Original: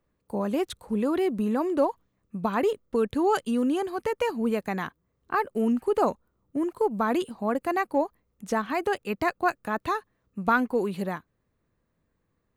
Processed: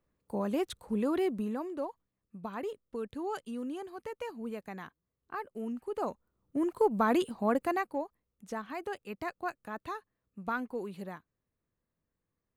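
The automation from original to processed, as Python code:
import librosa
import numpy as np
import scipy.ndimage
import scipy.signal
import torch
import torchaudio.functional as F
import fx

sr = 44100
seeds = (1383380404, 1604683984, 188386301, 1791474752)

y = fx.gain(x, sr, db=fx.line((1.25, -4.5), (1.75, -13.0), (5.86, -13.0), (6.73, -1.5), (7.61, -1.5), (8.04, -11.5)))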